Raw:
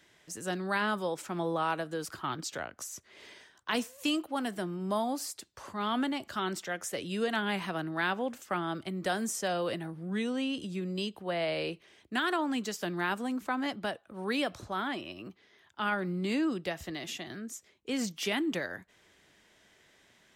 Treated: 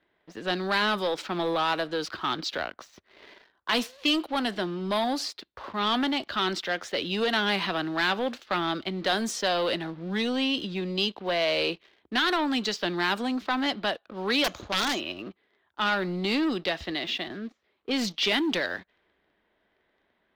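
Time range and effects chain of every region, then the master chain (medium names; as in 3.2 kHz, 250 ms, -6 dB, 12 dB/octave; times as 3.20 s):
14.44–15.00 s: median filter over 9 samples + resonant low-pass 6.7 kHz, resonance Q 15 + integer overflow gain 26 dB
17.28–17.91 s: zero-crossing glitches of -41.5 dBFS + low-pass 1.1 kHz 6 dB/octave
whole clip: level-controlled noise filter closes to 1.3 kHz, open at -27.5 dBFS; waveshaping leveller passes 2; graphic EQ 125/4000/8000 Hz -10/+10/-9 dB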